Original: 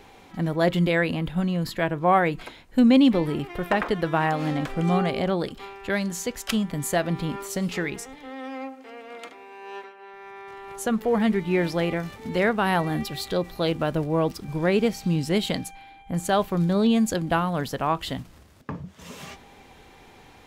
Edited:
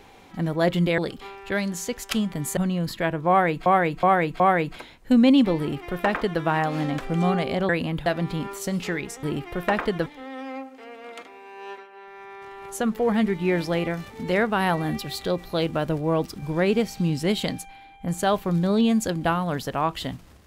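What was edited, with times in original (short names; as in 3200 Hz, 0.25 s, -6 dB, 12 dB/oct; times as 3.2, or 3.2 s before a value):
0.98–1.35 swap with 5.36–6.95
2.07–2.44 loop, 4 plays
3.26–4.09 copy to 8.12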